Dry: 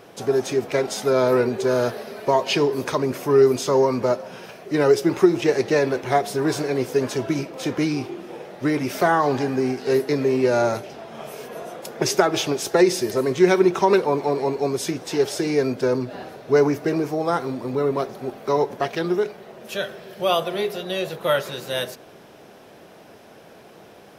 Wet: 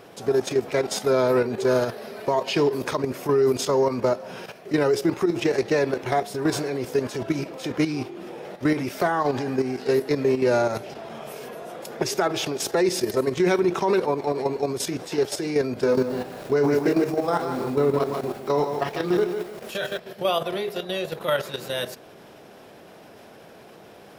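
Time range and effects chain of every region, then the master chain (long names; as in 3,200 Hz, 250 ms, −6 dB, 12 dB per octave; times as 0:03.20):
0:15.74–0:19.98: double-tracking delay 28 ms −5.5 dB + feedback echo at a low word length 150 ms, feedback 35%, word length 7 bits, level −5.5 dB
whole clip: output level in coarse steps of 10 dB; brickwall limiter −15.5 dBFS; notch filter 6,100 Hz, Q 22; level +3 dB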